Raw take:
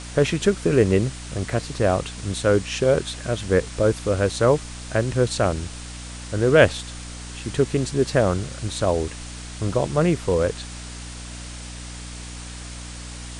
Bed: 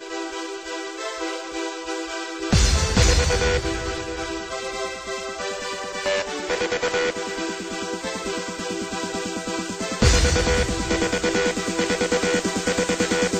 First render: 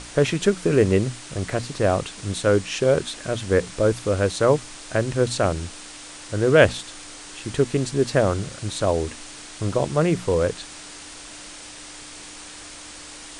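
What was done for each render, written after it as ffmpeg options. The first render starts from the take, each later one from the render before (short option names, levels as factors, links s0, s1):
-af "bandreject=f=60:t=h:w=6,bandreject=f=120:t=h:w=6,bandreject=f=180:t=h:w=6,bandreject=f=240:t=h:w=6"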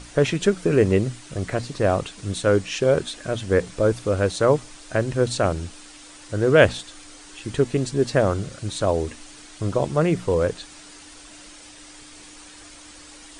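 -af "afftdn=nr=7:nf=-40"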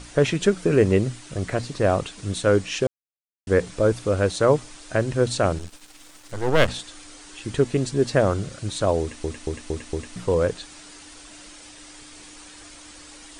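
-filter_complex "[0:a]asettb=1/sr,asplit=3[s0][s1][s2];[s0]atrim=end=5.584[s3];[s1]atrim=start=5.58:end=6.68,asetpts=PTS-STARTPTS,afade=t=in:d=0.004:c=qsin,afade=t=out:st=1.096:d=0.004:c=qsin,aeval=exprs='max(val(0),0)':c=same[s4];[s2]atrim=start=6.676[s5];[s3][s4]acrossfade=d=0.004:c1=hsin:c2=qsin[s6];[s6][s5]acrossfade=d=0.004:c1=qsin:c2=hsin,asplit=8[s7][s8][s9][s10][s11][s12][s13][s14];[s7]atrim=end=2.87,asetpts=PTS-STARTPTS,afade=t=out:st=2.866:d=0.004:c=hsin[s15];[s8]atrim=start=2.87:end=3.47,asetpts=PTS-STARTPTS,volume=0[s16];[s9]atrim=start=3.47:end=9.242,asetpts=PTS-STARTPTS,afade=t=in:d=0.004:c=hsin[s17];[s10]atrim=start=9.008:end=9.242[s18];[s11]atrim=start=9.008:end=9.242[s19];[s12]atrim=start=9.008:end=9.242[s20];[s13]atrim=start=9.008:end=9.242[s21];[s14]atrim=start=10.158[s22];[s15][s16][s17]concat=n=3:v=0:a=1[s23];[s23][s18]acrossfade=d=0.004:c1=hsin:c2=hsin[s24];[s24][s19]acrossfade=d=0.004:c1=hsin:c2=hsin[s25];[s25][s20]acrossfade=d=0.004:c1=hsin:c2=hsin[s26];[s26][s21]acrossfade=d=0.004:c1=hsin:c2=hsin[s27];[s27][s22]acrossfade=d=0.004:c1=hsin:c2=hsin"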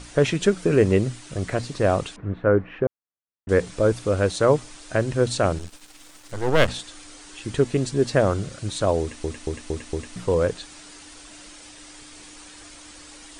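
-filter_complex "[0:a]asettb=1/sr,asplit=3[s0][s1][s2];[s0]atrim=end=2.164[s3];[s1]atrim=start=2.16:end=3.49,asetpts=PTS-STARTPTS,afade=t=in:d=0.004:c=qsin,afade=t=out:st=1.326:d=0.004:c=qsin,lowpass=f=1800:w=0.5412,lowpass=f=1800:w=1.3066[s4];[s2]atrim=start=3.486[s5];[s3][s4]acrossfade=d=0.004:c1=hsin:c2=qsin[s6];[s6][s5]acrossfade=d=0.004:c1=qsin:c2=hsin"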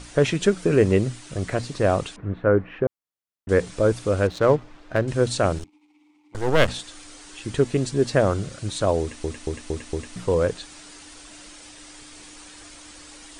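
-filter_complex "[0:a]asettb=1/sr,asplit=3[s0][s1][s2];[s0]atrim=end=4.274[s3];[s1]atrim=start=4.27:end=5.08,asetpts=PTS-STARTPTS,afade=t=in:d=0.004:c=qsin,afade=t=out:st=0.806:d=0.004:c=qsin,adynamicsmooth=sensitivity=3:basefreq=1900[s4];[s2]atrim=start=5.076[s5];[s3][s4]acrossfade=d=0.004:c1=hsin:c2=qsin[s6];[s6][s5]acrossfade=d=0.004:c1=qsin:c2=hsin,asettb=1/sr,asplit=3[s7][s8][s9];[s7]atrim=end=5.644[s10];[s8]atrim=start=5.64:end=6.35,asetpts=PTS-STARTPTS,afade=t=in:d=0.004:c=qsin,afade=t=out:st=0.706:d=0.004:c=qsin,asplit=3[s11][s12][s13];[s11]bandpass=f=300:t=q:w=8,volume=1[s14];[s12]bandpass=f=870:t=q:w=8,volume=0.501[s15];[s13]bandpass=f=2240:t=q:w=8,volume=0.355[s16];[s14][s15][s16]amix=inputs=3:normalize=0[s17];[s9]atrim=start=6.346[s18];[s10][s17]acrossfade=d=0.004:c1=hsin:c2=qsin[s19];[s19][s18]acrossfade=d=0.004:c1=qsin:c2=hsin"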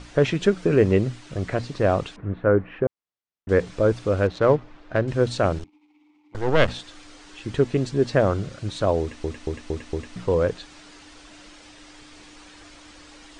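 -af "lowpass=6100,highshelf=f=4600:g=-5"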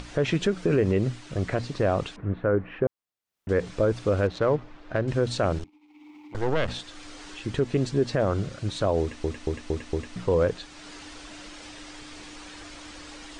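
-af "alimiter=limit=0.211:level=0:latency=1:release=88,acompressor=mode=upward:threshold=0.0158:ratio=2.5"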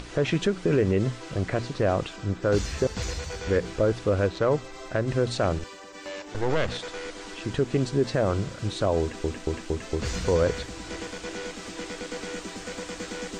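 -filter_complex "[1:a]volume=0.188[s0];[0:a][s0]amix=inputs=2:normalize=0"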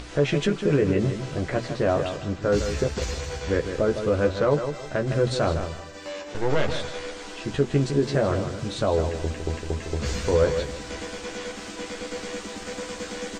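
-filter_complex "[0:a]asplit=2[s0][s1];[s1]adelay=14,volume=0.562[s2];[s0][s2]amix=inputs=2:normalize=0,asplit=2[s3][s4];[s4]adelay=158,lowpass=f=4000:p=1,volume=0.398,asplit=2[s5][s6];[s6]adelay=158,lowpass=f=4000:p=1,volume=0.29,asplit=2[s7][s8];[s8]adelay=158,lowpass=f=4000:p=1,volume=0.29[s9];[s3][s5][s7][s9]amix=inputs=4:normalize=0"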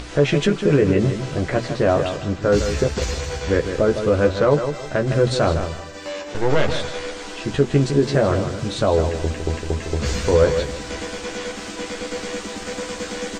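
-af "volume=1.78"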